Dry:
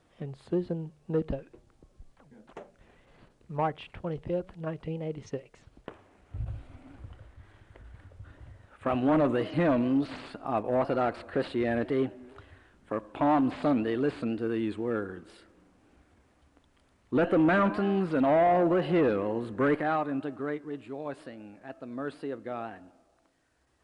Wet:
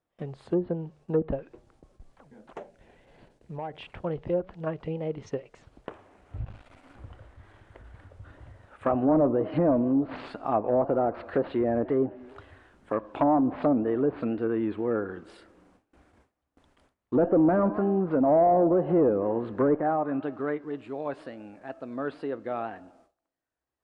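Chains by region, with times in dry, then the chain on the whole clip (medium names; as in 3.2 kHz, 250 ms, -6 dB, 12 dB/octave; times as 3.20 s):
2.60–3.83 s: peaking EQ 1.2 kHz -10.5 dB 0.36 oct + compression, threshold -36 dBFS
6.45–6.96 s: partial rectifier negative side -12 dB + tilt shelf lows -6 dB, about 710 Hz
whole clip: low-pass that closes with the level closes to 720 Hz, closed at -23 dBFS; gate with hold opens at -52 dBFS; peaking EQ 740 Hz +5 dB 2.5 oct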